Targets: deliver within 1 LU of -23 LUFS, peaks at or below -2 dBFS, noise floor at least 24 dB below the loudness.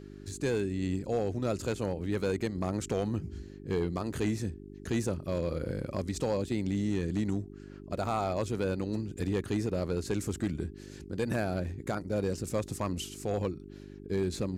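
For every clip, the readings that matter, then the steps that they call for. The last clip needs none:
clipped 0.8%; flat tops at -22.0 dBFS; hum 50 Hz; harmonics up to 400 Hz; hum level -47 dBFS; loudness -33.0 LUFS; peak -22.0 dBFS; loudness target -23.0 LUFS
-> clip repair -22 dBFS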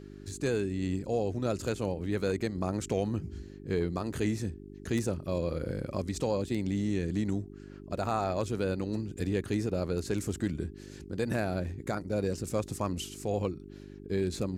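clipped 0.0%; hum 50 Hz; harmonics up to 400 Hz; hum level -47 dBFS
-> de-hum 50 Hz, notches 8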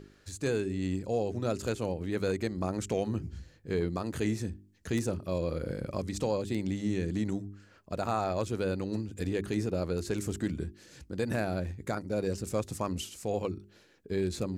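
hum none; loudness -33.5 LUFS; peak -14.5 dBFS; loudness target -23.0 LUFS
-> gain +10.5 dB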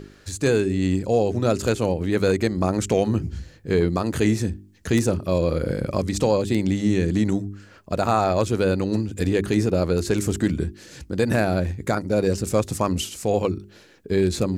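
loudness -23.0 LUFS; peak -4.0 dBFS; noise floor -50 dBFS

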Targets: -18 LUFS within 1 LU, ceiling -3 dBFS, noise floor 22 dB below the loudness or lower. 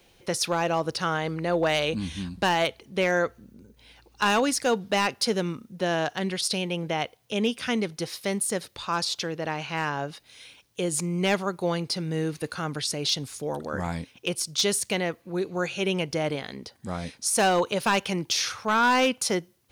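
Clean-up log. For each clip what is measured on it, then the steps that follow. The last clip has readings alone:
clipped 0.4%; flat tops at -16.0 dBFS; loudness -27.0 LUFS; peak -16.0 dBFS; loudness target -18.0 LUFS
-> clip repair -16 dBFS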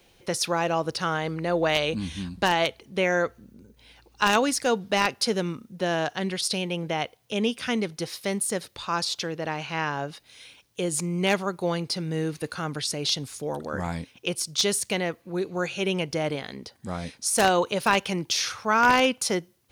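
clipped 0.0%; loudness -26.5 LUFS; peak -7.0 dBFS; loudness target -18.0 LUFS
-> gain +8.5 dB; limiter -3 dBFS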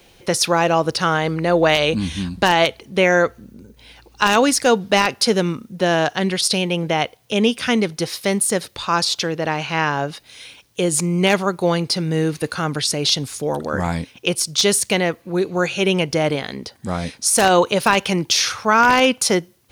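loudness -18.5 LUFS; peak -3.0 dBFS; noise floor -52 dBFS

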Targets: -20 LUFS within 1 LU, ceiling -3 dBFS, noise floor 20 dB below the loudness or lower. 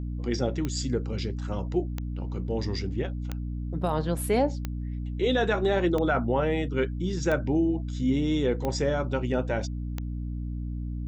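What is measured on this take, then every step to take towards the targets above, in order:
clicks 8; hum 60 Hz; harmonics up to 300 Hz; hum level -30 dBFS; loudness -28.5 LUFS; peak -13.0 dBFS; loudness target -20.0 LUFS
-> de-click; notches 60/120/180/240/300 Hz; gain +8.5 dB

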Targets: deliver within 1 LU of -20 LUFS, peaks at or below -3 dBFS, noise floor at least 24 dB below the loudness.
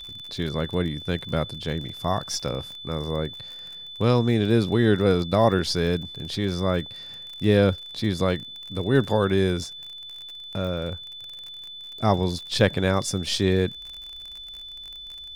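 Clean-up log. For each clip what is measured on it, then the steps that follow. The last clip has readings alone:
ticks 38/s; steady tone 3500 Hz; tone level -37 dBFS; loudness -24.5 LUFS; peak -5.0 dBFS; loudness target -20.0 LUFS
-> de-click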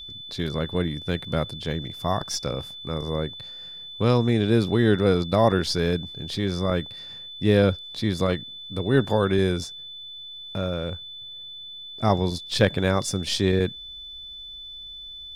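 ticks 1.2/s; steady tone 3500 Hz; tone level -37 dBFS
-> notch 3500 Hz, Q 30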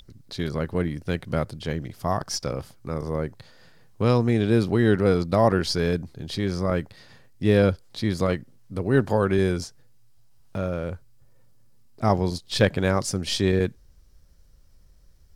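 steady tone none; loudness -24.5 LUFS; peak -5.5 dBFS; loudness target -20.0 LUFS
-> gain +4.5 dB; limiter -3 dBFS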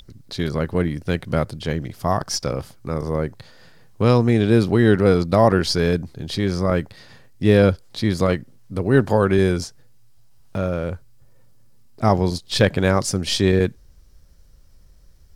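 loudness -20.0 LUFS; peak -3.0 dBFS; noise floor -49 dBFS

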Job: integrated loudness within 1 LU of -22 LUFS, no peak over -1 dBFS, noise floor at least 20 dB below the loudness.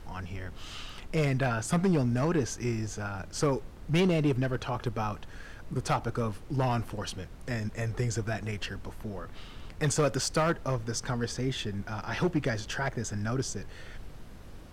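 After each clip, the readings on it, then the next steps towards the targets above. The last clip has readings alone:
clipped 1.0%; flat tops at -20.0 dBFS; noise floor -46 dBFS; noise floor target -51 dBFS; loudness -31.0 LUFS; peak -20.0 dBFS; loudness target -22.0 LUFS
-> clip repair -20 dBFS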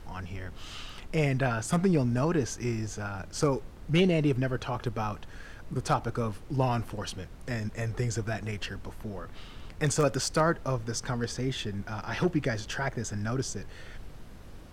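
clipped 0.0%; noise floor -46 dBFS; noise floor target -51 dBFS
-> noise print and reduce 6 dB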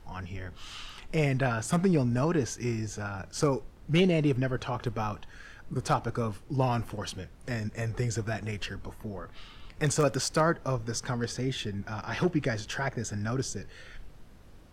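noise floor -51 dBFS; loudness -30.5 LUFS; peak -11.0 dBFS; loudness target -22.0 LUFS
-> gain +8.5 dB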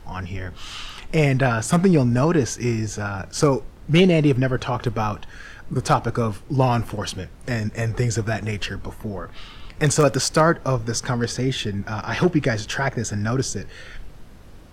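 loudness -22.0 LUFS; peak -2.5 dBFS; noise floor -43 dBFS

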